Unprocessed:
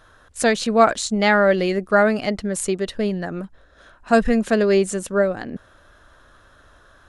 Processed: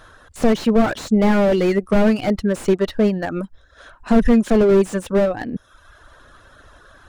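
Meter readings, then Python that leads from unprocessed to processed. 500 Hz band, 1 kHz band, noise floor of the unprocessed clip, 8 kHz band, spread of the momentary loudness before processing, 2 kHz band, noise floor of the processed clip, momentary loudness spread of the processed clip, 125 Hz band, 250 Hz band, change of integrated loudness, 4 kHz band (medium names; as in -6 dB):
+1.0 dB, -4.0 dB, -53 dBFS, -8.0 dB, 15 LU, -6.0 dB, -52 dBFS, 12 LU, +5.0 dB, +5.0 dB, +1.5 dB, -3.5 dB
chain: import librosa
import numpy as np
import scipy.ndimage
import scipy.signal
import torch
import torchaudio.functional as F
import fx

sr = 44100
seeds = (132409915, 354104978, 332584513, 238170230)

y = fx.dereverb_blind(x, sr, rt60_s=0.81)
y = fx.slew_limit(y, sr, full_power_hz=51.0)
y = F.gain(torch.from_numpy(y), 6.5).numpy()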